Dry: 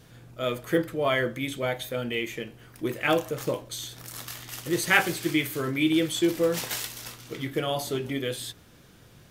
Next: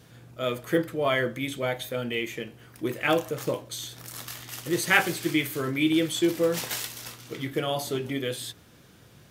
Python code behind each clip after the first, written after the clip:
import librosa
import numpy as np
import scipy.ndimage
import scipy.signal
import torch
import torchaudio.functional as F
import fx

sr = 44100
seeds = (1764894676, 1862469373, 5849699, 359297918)

y = scipy.signal.sosfilt(scipy.signal.butter(2, 60.0, 'highpass', fs=sr, output='sos'), x)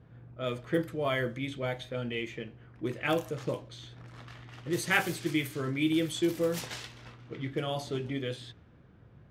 y = fx.env_lowpass(x, sr, base_hz=1500.0, full_db=-21.5)
y = fx.low_shelf(y, sr, hz=130.0, db=10.5)
y = F.gain(torch.from_numpy(y), -6.0).numpy()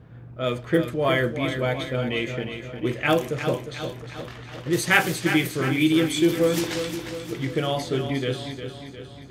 y = fx.echo_feedback(x, sr, ms=356, feedback_pct=55, wet_db=-9.0)
y = F.gain(torch.from_numpy(y), 8.0).numpy()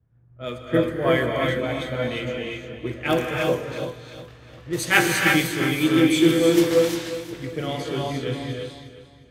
y = fx.rev_gated(x, sr, seeds[0], gate_ms=370, shape='rising', drr_db=-0.5)
y = fx.band_widen(y, sr, depth_pct=70)
y = F.gain(torch.from_numpy(y), -2.0).numpy()